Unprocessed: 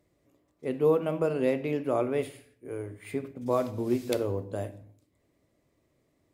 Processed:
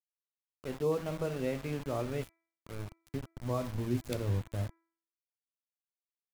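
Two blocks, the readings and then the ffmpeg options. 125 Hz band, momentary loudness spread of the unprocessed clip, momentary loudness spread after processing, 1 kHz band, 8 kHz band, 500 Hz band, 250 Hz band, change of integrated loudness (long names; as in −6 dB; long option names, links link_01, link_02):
+2.0 dB, 13 LU, 12 LU, −7.0 dB, −2.0 dB, −8.5 dB, −6.5 dB, −6.5 dB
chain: -af "aeval=exprs='val(0)*gte(abs(val(0)),0.0188)':channel_layout=same,asubboost=boost=6.5:cutoff=160,bandreject=frequency=331:width_type=h:width=4,bandreject=frequency=662:width_type=h:width=4,bandreject=frequency=993:width_type=h:width=4,bandreject=frequency=1324:width_type=h:width=4,bandreject=frequency=1655:width_type=h:width=4,bandreject=frequency=1986:width_type=h:width=4,bandreject=frequency=2317:width_type=h:width=4,volume=-6.5dB"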